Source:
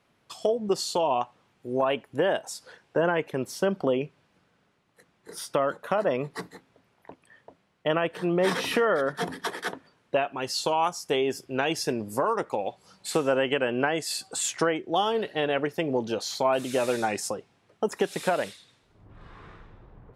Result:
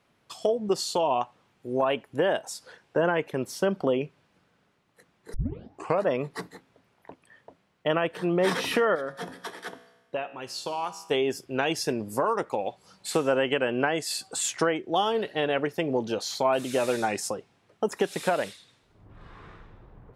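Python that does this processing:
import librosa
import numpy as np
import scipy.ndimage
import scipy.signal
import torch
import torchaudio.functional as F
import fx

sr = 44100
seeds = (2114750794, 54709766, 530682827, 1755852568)

y = fx.comb_fb(x, sr, f0_hz=61.0, decay_s=1.1, harmonics='all', damping=0.0, mix_pct=60, at=(8.95, 11.11))
y = fx.edit(y, sr, fx.tape_start(start_s=5.34, length_s=0.7), tone=tone)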